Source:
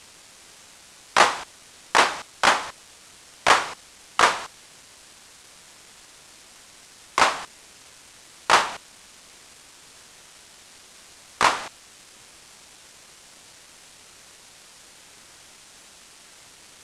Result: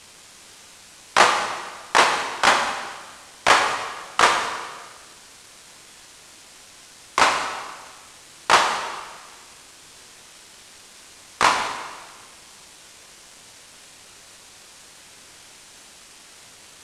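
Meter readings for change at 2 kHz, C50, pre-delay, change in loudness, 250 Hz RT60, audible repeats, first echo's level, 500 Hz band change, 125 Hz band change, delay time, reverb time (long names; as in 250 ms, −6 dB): +2.5 dB, 6.0 dB, 8 ms, +1.5 dB, 1.5 s, no echo audible, no echo audible, +2.5 dB, +2.5 dB, no echo audible, 1.5 s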